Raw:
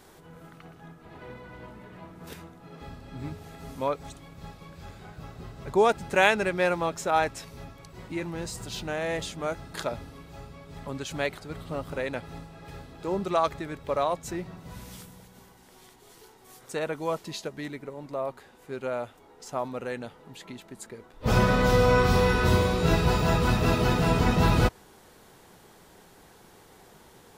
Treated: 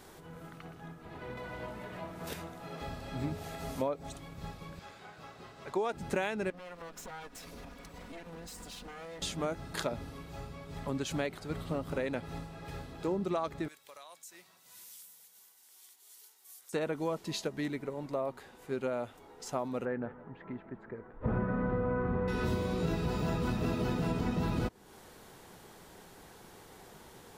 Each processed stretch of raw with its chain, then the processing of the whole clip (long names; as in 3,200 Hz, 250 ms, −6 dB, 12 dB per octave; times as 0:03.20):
0:01.37–0:04.18: parametric band 640 Hz +6 dB 0.58 octaves + one half of a high-frequency compander encoder only
0:04.79–0:05.93: high-pass filter 630 Hz 6 dB per octave + high-shelf EQ 9,600 Hz −10.5 dB
0:06.50–0:09.22: lower of the sound and its delayed copy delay 4.1 ms + downward compressor, threshold −43 dBFS
0:13.68–0:16.73: first difference + downward compressor 5 to 1, threshold −47 dBFS + single-tap delay 432 ms −21.5 dB
0:19.85–0:22.28: Chebyshev low-pass filter 1,700 Hz, order 3 + single-tap delay 162 ms −16.5 dB
whole clip: dynamic equaliser 250 Hz, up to +8 dB, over −39 dBFS, Q 0.78; downward compressor 6 to 1, threshold −30 dBFS